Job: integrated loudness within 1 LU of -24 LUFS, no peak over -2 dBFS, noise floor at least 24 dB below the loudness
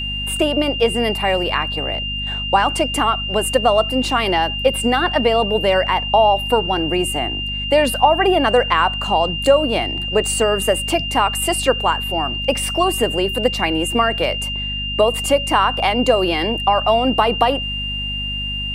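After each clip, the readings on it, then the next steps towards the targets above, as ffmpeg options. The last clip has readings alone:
hum 50 Hz; harmonics up to 250 Hz; hum level -26 dBFS; steady tone 2800 Hz; tone level -23 dBFS; loudness -17.5 LUFS; peak -1.5 dBFS; loudness target -24.0 LUFS
-> -af "bandreject=f=50:t=h:w=4,bandreject=f=100:t=h:w=4,bandreject=f=150:t=h:w=4,bandreject=f=200:t=h:w=4,bandreject=f=250:t=h:w=4"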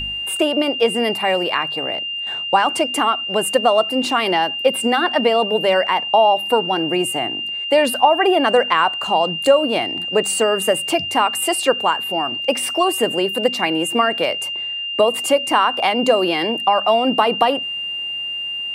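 hum none; steady tone 2800 Hz; tone level -23 dBFS
-> -af "bandreject=f=2.8k:w=30"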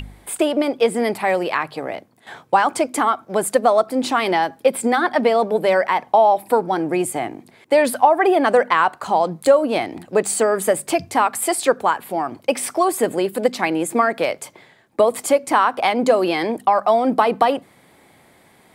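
steady tone none; loudness -18.5 LUFS; peak -1.5 dBFS; loudness target -24.0 LUFS
-> -af "volume=-5.5dB"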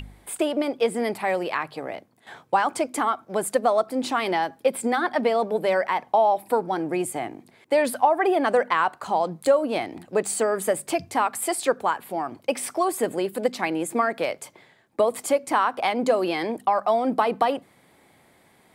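loudness -24.0 LUFS; peak -7.0 dBFS; noise floor -59 dBFS

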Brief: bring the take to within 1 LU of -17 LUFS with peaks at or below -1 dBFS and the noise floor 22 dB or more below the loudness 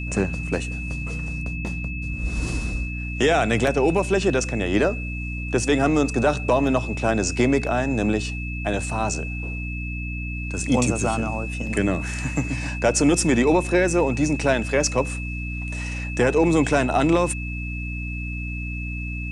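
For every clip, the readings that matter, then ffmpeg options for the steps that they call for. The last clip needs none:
hum 60 Hz; harmonics up to 300 Hz; hum level -27 dBFS; steady tone 2600 Hz; tone level -33 dBFS; loudness -23.0 LUFS; peak -8.0 dBFS; loudness target -17.0 LUFS
-> -af "bandreject=f=60:t=h:w=6,bandreject=f=120:t=h:w=6,bandreject=f=180:t=h:w=6,bandreject=f=240:t=h:w=6,bandreject=f=300:t=h:w=6"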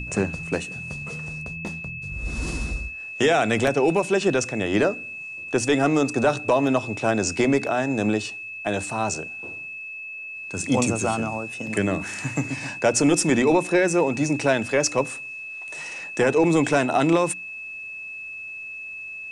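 hum none; steady tone 2600 Hz; tone level -33 dBFS
-> -af "bandreject=f=2.6k:w=30"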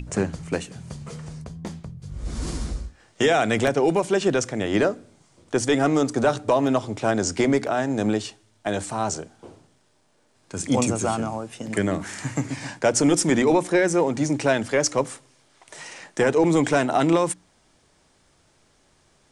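steady tone none; loudness -23.0 LUFS; peak -8.5 dBFS; loudness target -17.0 LUFS
-> -af "volume=6dB"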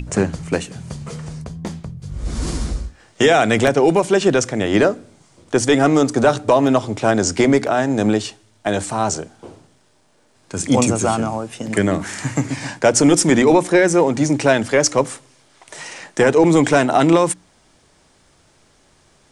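loudness -17.0 LUFS; peak -2.5 dBFS; noise floor -56 dBFS

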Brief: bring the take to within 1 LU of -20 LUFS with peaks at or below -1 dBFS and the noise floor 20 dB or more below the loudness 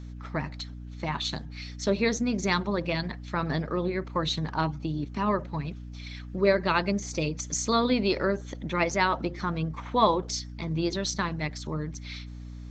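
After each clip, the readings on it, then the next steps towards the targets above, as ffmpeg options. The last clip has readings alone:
hum 60 Hz; harmonics up to 300 Hz; hum level -38 dBFS; loudness -28.5 LUFS; peak -8.5 dBFS; loudness target -20.0 LUFS
-> -af "bandreject=f=60:t=h:w=4,bandreject=f=120:t=h:w=4,bandreject=f=180:t=h:w=4,bandreject=f=240:t=h:w=4,bandreject=f=300:t=h:w=4"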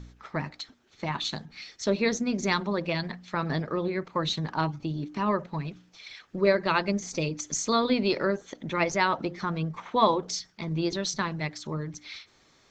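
hum none; loudness -29.0 LUFS; peak -8.5 dBFS; loudness target -20.0 LUFS
-> -af "volume=9dB,alimiter=limit=-1dB:level=0:latency=1"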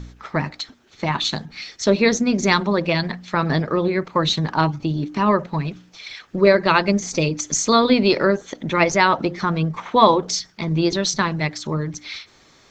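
loudness -20.0 LUFS; peak -1.0 dBFS; noise floor -53 dBFS

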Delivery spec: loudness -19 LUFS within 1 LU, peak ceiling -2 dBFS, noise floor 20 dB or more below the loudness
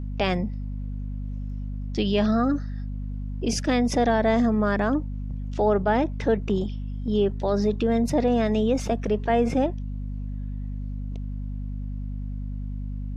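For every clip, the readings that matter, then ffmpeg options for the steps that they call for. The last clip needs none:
hum 50 Hz; harmonics up to 250 Hz; hum level -28 dBFS; loudness -26.0 LUFS; peak -10.0 dBFS; loudness target -19.0 LUFS
-> -af "bandreject=f=50:t=h:w=6,bandreject=f=100:t=h:w=6,bandreject=f=150:t=h:w=6,bandreject=f=200:t=h:w=6,bandreject=f=250:t=h:w=6"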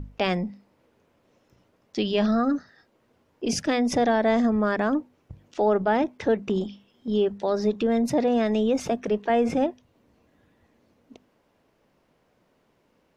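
hum none; loudness -24.5 LUFS; peak -11.0 dBFS; loudness target -19.0 LUFS
-> -af "volume=5.5dB"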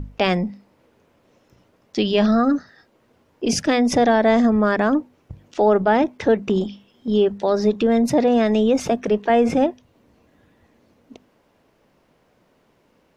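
loudness -19.0 LUFS; peak -5.5 dBFS; noise floor -62 dBFS

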